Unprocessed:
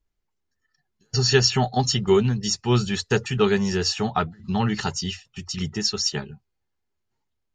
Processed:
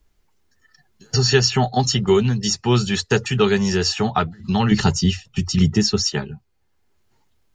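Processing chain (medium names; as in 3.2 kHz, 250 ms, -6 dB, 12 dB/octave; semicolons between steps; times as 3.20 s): 4.71–6.03 s: bass shelf 420 Hz +11.5 dB; three bands compressed up and down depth 40%; trim +3 dB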